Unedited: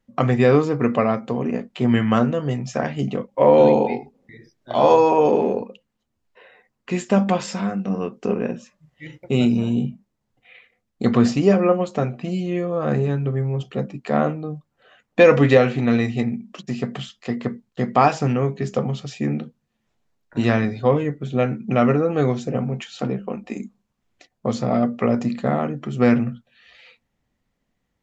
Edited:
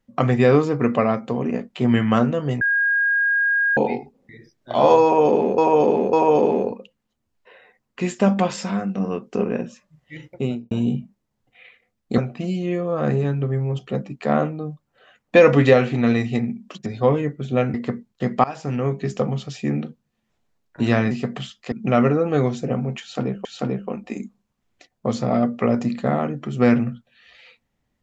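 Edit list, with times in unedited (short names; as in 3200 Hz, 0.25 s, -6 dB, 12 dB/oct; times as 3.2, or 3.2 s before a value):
2.61–3.77 bleep 1630 Hz -16 dBFS
5.03–5.58 loop, 3 plays
9.17–9.61 studio fade out
11.08–12.02 cut
16.7–17.31 swap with 20.68–21.56
18.01–18.51 fade in, from -22.5 dB
22.85–23.29 loop, 2 plays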